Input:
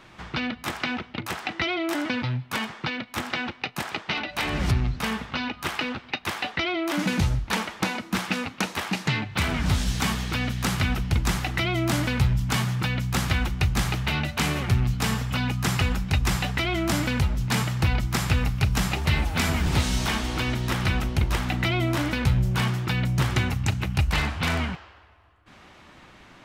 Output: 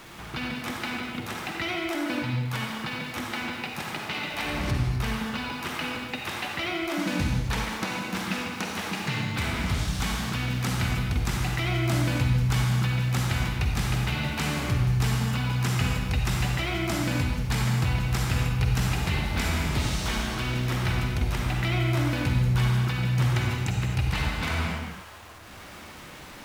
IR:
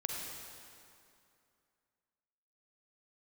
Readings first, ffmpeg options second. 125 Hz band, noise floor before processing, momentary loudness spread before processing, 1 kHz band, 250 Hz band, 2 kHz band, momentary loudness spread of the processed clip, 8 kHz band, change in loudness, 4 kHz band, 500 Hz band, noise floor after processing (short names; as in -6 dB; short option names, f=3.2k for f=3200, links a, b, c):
0.0 dB, -51 dBFS, 6 LU, -2.5 dB, -2.0 dB, -2.5 dB, 8 LU, -2.5 dB, -1.5 dB, -2.5 dB, -2.5 dB, -44 dBFS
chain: -filter_complex "[0:a]aeval=exprs='val(0)+0.5*0.0141*sgn(val(0))':c=same[a];[1:a]atrim=start_sample=2205,afade=t=out:st=0.31:d=0.01,atrim=end_sample=14112,asetrate=41454,aresample=44100[b];[a][b]afir=irnorm=-1:irlink=0,volume=-5.5dB"